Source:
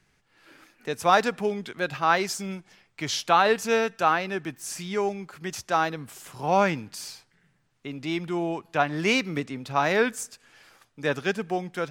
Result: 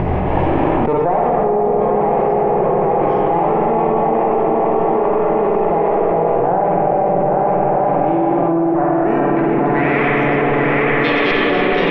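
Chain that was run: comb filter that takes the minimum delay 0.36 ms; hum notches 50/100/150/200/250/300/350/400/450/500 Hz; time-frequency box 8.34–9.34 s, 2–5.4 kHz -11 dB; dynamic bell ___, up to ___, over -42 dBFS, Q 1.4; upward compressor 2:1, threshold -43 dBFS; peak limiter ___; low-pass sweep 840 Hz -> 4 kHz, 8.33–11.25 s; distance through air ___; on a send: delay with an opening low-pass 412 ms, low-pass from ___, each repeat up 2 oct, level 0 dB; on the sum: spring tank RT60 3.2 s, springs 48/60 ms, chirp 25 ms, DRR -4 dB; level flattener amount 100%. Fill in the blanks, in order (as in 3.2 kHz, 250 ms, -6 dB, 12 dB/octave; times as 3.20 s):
170 Hz, -6 dB, -16.5 dBFS, 170 m, 750 Hz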